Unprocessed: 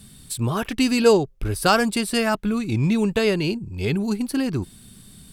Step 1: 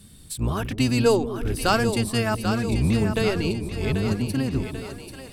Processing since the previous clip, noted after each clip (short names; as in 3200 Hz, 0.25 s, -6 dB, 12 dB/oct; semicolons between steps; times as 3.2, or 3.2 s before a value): octaver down 1 oct, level -1 dB; split-band echo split 380 Hz, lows 0.181 s, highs 0.789 s, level -8 dB; gain -3.5 dB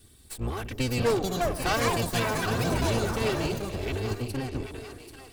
minimum comb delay 2.6 ms; echoes that change speed 0.705 s, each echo +7 st, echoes 3; gain -5 dB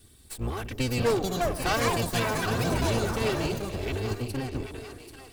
companded quantiser 8-bit